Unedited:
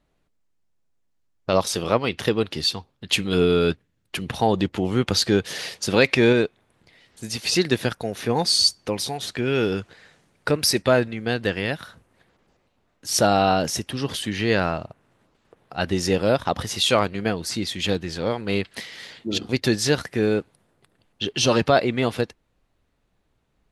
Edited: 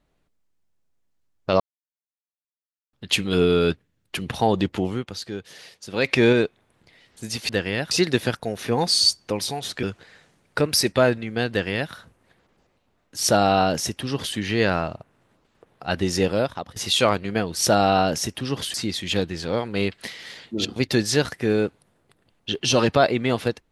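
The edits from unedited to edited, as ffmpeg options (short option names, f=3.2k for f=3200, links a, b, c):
-filter_complex "[0:a]asplit=11[a][b][c][d][e][f][g][h][i][j][k];[a]atrim=end=1.6,asetpts=PTS-STARTPTS,afade=t=out:st=1.596:d=0.004:c=hsin[l];[b]atrim=start=1.6:end=2.93,asetpts=PTS-STARTPTS,volume=0[m];[c]atrim=start=2.93:end=5.05,asetpts=PTS-STARTPTS,afade=t=in:d=0.004:c=hsin,afade=t=out:st=1.89:d=0.23:silence=0.223872[n];[d]atrim=start=5.05:end=5.92,asetpts=PTS-STARTPTS,volume=-13dB[o];[e]atrim=start=5.92:end=7.492,asetpts=PTS-STARTPTS,afade=t=in:d=0.23:silence=0.223872[p];[f]atrim=start=11.398:end=11.822[q];[g]atrim=start=7.488:end=9.412[r];[h]atrim=start=9.728:end=16.66,asetpts=PTS-STARTPTS,afade=t=out:st=6.432:d=0.5:silence=0.0668344[s];[i]atrim=start=16.66:end=17.472,asetpts=PTS-STARTPTS,afade=t=in:d=0.004:c=hsin:silence=0.0668344[t];[j]atrim=start=13.088:end=14.262[u];[k]atrim=start=17.468[v];[l][m][n][o][p]concat=n=5:v=0:a=1[w];[w][q]acrossfade=d=0.004:c1=hsin:c2=hsin[x];[x][r]acrossfade=d=0.004:c1=hsin:c2=hsin[y];[s][t]concat=n=2:v=0:a=1[z];[y][z]acrossfade=d=0.004:c1=hsin:c2=hsin[aa];[aa][u]acrossfade=d=0.004:c1=hsin:c2=hsin[ab];[ab][v]acrossfade=d=0.004:c1=hsin:c2=hsin"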